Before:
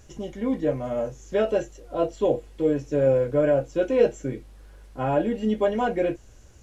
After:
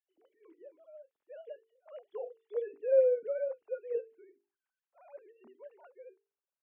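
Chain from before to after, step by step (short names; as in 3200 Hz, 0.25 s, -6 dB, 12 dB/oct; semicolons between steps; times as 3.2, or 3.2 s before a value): sine-wave speech; Doppler pass-by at 2.9, 11 m/s, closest 2.7 m; notches 50/100/150/200/250/300/350/400/450 Hz; gain -6.5 dB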